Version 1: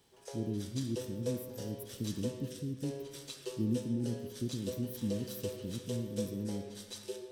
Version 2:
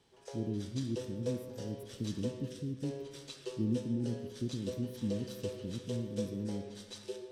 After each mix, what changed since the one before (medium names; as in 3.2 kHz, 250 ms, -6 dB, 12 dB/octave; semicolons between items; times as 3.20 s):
master: add distance through air 52 m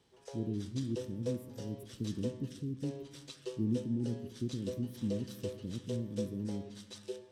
background: send -11.0 dB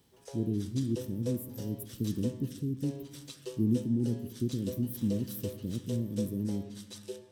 speech +5.0 dB; master: remove distance through air 52 m